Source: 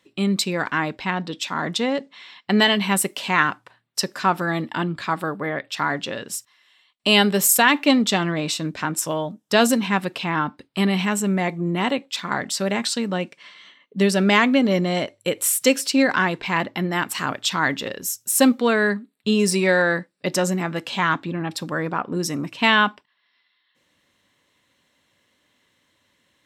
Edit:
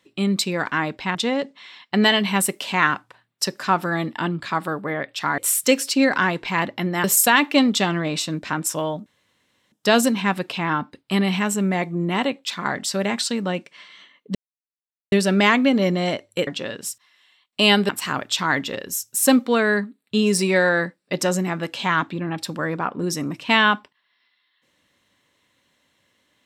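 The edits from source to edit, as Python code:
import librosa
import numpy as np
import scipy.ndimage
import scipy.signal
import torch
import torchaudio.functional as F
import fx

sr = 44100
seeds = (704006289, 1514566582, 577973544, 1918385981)

y = fx.edit(x, sr, fx.cut(start_s=1.15, length_s=0.56),
    fx.swap(start_s=5.94, length_s=1.42, other_s=15.36, other_length_s=1.66),
    fx.insert_room_tone(at_s=9.38, length_s=0.66),
    fx.insert_silence(at_s=14.01, length_s=0.77), tone=tone)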